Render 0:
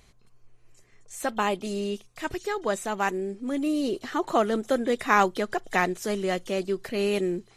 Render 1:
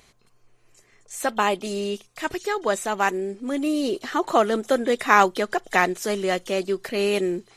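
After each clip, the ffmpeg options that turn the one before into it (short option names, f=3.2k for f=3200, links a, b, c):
-af "lowshelf=f=170:g=-11,volume=5dB"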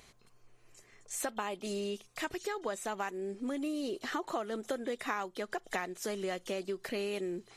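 -af "acompressor=threshold=-31dB:ratio=6,volume=-2.5dB"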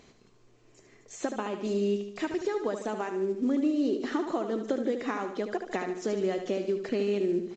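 -af "equalizer=f=290:w=0.67:g=12,aecho=1:1:74|148|222|296|370|444:0.398|0.191|0.0917|0.044|0.0211|0.0101,volume=-2dB" -ar 16000 -c:a pcm_alaw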